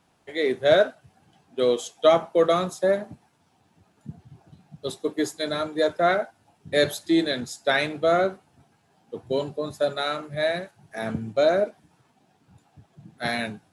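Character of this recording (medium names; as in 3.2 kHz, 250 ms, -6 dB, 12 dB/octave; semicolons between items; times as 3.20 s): noise floor -65 dBFS; spectral tilt -3.0 dB/octave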